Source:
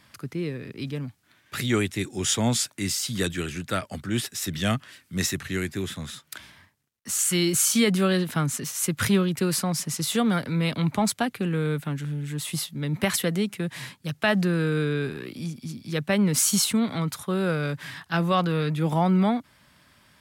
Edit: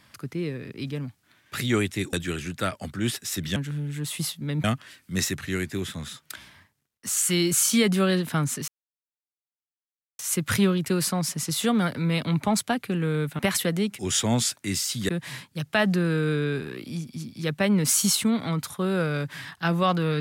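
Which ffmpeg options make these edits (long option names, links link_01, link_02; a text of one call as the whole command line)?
ffmpeg -i in.wav -filter_complex "[0:a]asplit=8[link_01][link_02][link_03][link_04][link_05][link_06][link_07][link_08];[link_01]atrim=end=2.132[link_09];[link_02]atrim=start=3.228:end=4.662[link_10];[link_03]atrim=start=11.898:end=12.982[link_11];[link_04]atrim=start=4.658:end=8.7,asetpts=PTS-STARTPTS,afade=type=out:start_time=4.038:duration=0.004:curve=hsin,apad=pad_dur=1.51[link_12];[link_05]atrim=start=8.7:end=11.902,asetpts=PTS-STARTPTS,afade=type=in:duration=0.004:curve=hsin[link_13];[link_06]atrim=start=12.978:end=13.582[link_14];[link_07]atrim=start=2.128:end=3.232[link_15];[link_08]atrim=start=13.578[link_16];[link_09][link_10]acrossfade=duration=0.004:curve1=hsin:curve2=hsin[link_17];[link_17][link_11]acrossfade=duration=0.004:curve1=hsin:curve2=hsin[link_18];[link_12][link_13]concat=n=2:v=0:a=1[link_19];[link_18][link_19]acrossfade=duration=0.004:curve1=hsin:curve2=hsin[link_20];[link_20][link_14]acrossfade=duration=0.004:curve1=hsin:curve2=hsin[link_21];[link_21][link_15]acrossfade=duration=0.004:curve1=hsin:curve2=hsin[link_22];[link_22][link_16]acrossfade=duration=0.004:curve1=hsin:curve2=hsin" out.wav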